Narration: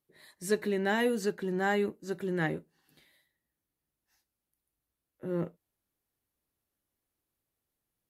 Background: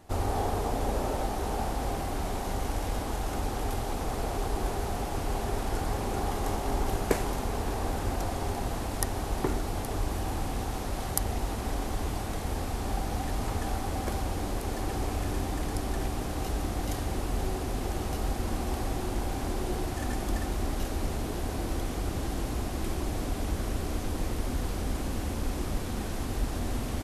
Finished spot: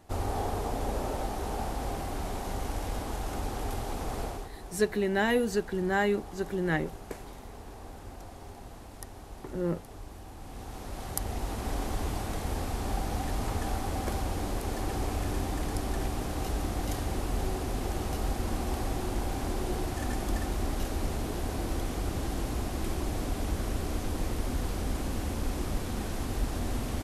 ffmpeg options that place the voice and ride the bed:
-filter_complex "[0:a]adelay=4300,volume=2dB[a];[1:a]volume=11dB,afade=t=out:st=4.22:d=0.28:silence=0.266073,afade=t=in:st=10.37:d=1.44:silence=0.211349[b];[a][b]amix=inputs=2:normalize=0"

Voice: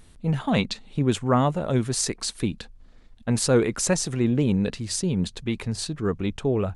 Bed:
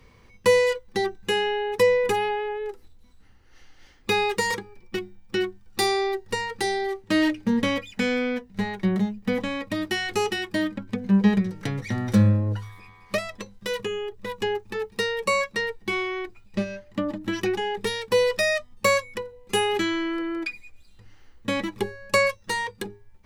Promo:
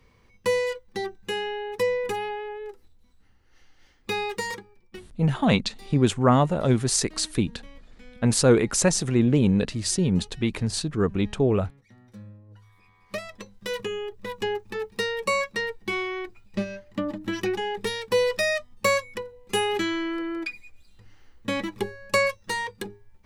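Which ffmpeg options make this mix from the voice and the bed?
-filter_complex "[0:a]adelay=4950,volume=2dB[a];[1:a]volume=19.5dB,afade=t=out:st=4.41:d=0.89:silence=0.0891251,afade=t=in:st=12.48:d=1.3:silence=0.0562341[b];[a][b]amix=inputs=2:normalize=0"

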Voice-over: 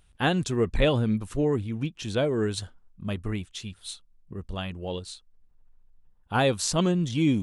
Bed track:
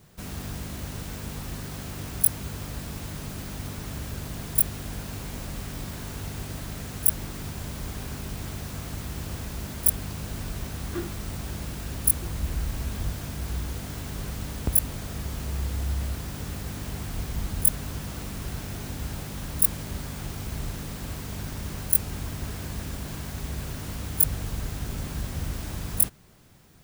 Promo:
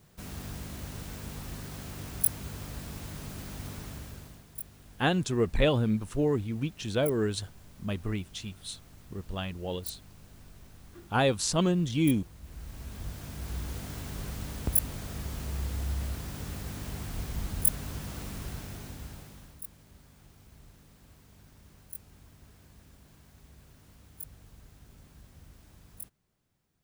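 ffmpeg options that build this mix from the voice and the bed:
-filter_complex "[0:a]adelay=4800,volume=-2dB[a];[1:a]volume=10dB,afade=t=out:st=3.77:d=0.67:silence=0.199526,afade=t=in:st=12.41:d=1.35:silence=0.177828,afade=t=out:st=18.34:d=1.27:silence=0.125893[b];[a][b]amix=inputs=2:normalize=0"

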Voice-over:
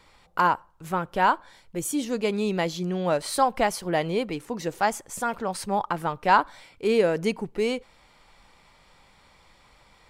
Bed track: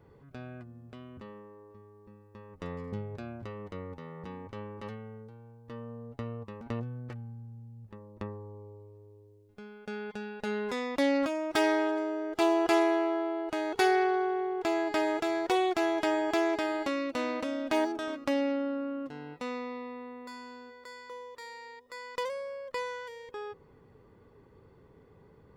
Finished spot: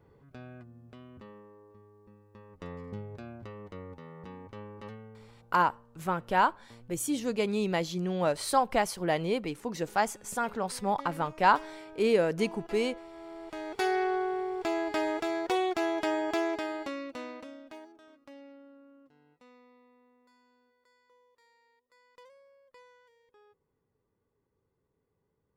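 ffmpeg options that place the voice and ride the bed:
-filter_complex "[0:a]adelay=5150,volume=-3.5dB[a];[1:a]volume=14.5dB,afade=t=out:st=4.91:d=0.93:silence=0.158489,afade=t=in:st=13.12:d=1.03:silence=0.133352,afade=t=out:st=16.29:d=1.51:silence=0.1[b];[a][b]amix=inputs=2:normalize=0"

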